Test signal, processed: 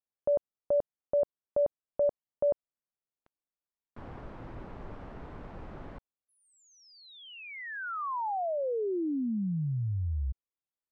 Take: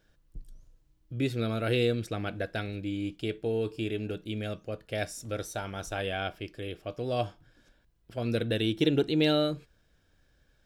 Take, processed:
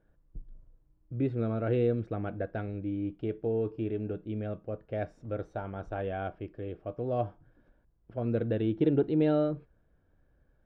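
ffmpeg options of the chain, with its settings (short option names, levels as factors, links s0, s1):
-af "lowpass=1100"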